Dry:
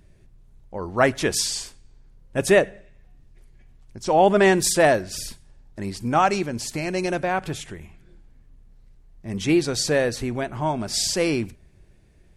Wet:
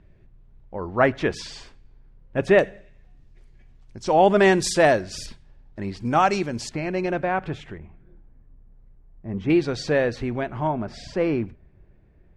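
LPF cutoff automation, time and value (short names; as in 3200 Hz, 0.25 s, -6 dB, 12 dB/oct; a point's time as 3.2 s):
2600 Hz
from 2.59 s 6100 Hz
from 5.26 s 3500 Hz
from 6.05 s 6400 Hz
from 6.69 s 2500 Hz
from 7.78 s 1300 Hz
from 9.5 s 3100 Hz
from 10.67 s 1700 Hz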